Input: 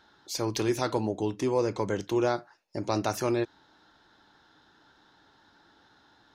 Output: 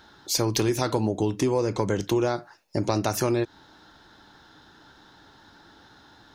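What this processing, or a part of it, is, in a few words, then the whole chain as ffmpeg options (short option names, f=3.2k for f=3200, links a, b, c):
ASMR close-microphone chain: -af "lowshelf=f=200:g=6,acompressor=threshold=-27dB:ratio=5,highshelf=f=7.7k:g=7,volume=7dB"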